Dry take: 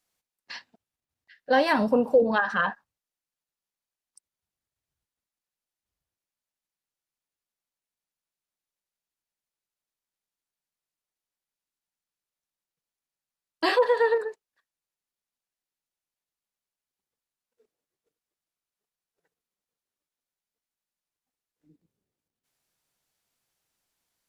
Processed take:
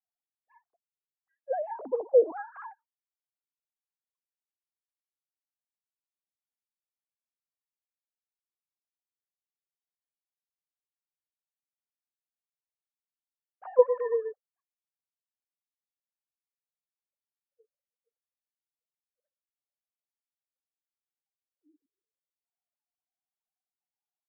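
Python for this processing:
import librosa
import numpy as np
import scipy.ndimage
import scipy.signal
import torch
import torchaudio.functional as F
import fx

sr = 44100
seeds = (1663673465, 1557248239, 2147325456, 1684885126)

y = fx.sine_speech(x, sr)
y = scipy.signal.sosfilt(scipy.signal.butter(4, 1100.0, 'lowpass', fs=sr, output='sos'), y)
y = y * librosa.db_to_amplitude(-4.0)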